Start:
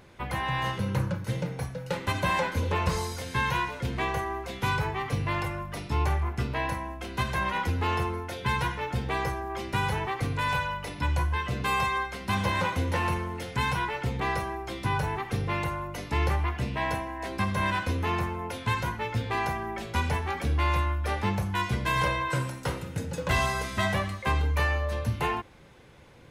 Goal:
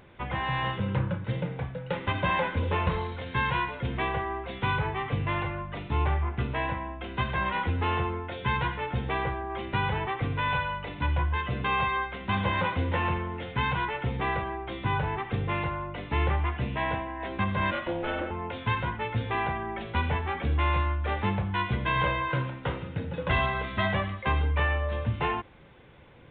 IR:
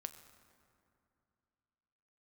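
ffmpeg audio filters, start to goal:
-filter_complex "[0:a]asettb=1/sr,asplit=3[s0][s1][s2];[s0]atrim=end=17.714[s3];[s1]atrim=start=17.71:end=18.31,asetpts=PTS-STARTPTS,afade=t=in:d=0.004:c=qsin,afade=t=out:st=0.596:d=0.004:c=qsin,aeval=exprs='val(0)*sin(2*PI*430*n/s)':c=same[s4];[s2]atrim=start=18.306[s5];[s3][s4]acrossfade=d=0.004:c1=hsin:c2=qsin[s6];[s6][s5]acrossfade=d=0.004:c1=qsin:c2=hsin,aresample=8000,aresample=44100"

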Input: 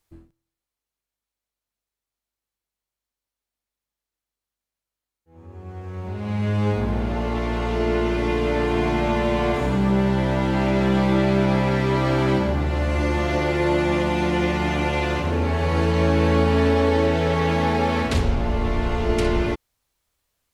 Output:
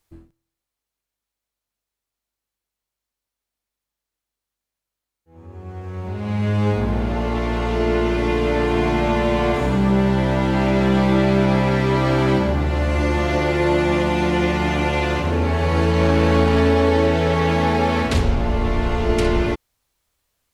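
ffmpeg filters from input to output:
-filter_complex "[0:a]asettb=1/sr,asplit=3[s0][s1][s2];[s0]atrim=end=16.004[s3];[s1]atrim=start=16:end=16.61,asetpts=PTS-STARTPTS,afade=t=in:d=0.004:c=qsin,afade=t=out:st=0.606:d=0.004:c=qsin,aeval=exprs='0.447*(cos(1*acos(clip(val(0)/0.447,-1,1)))-cos(1*PI/2))+0.0224*(cos(7*acos(clip(val(0)/0.447,-1,1)))-cos(7*PI/2))+0.0178*(cos(8*acos(clip(val(0)/0.447,-1,1)))-cos(8*PI/2))':c=same[s4];[s2]atrim=start=16.606[s5];[s3][s4]acrossfade=d=0.004:c1=hsin:c2=qsin[s6];[s6][s5]acrossfade=d=0.004:c1=qsin:c2=hsin,volume=1.33"

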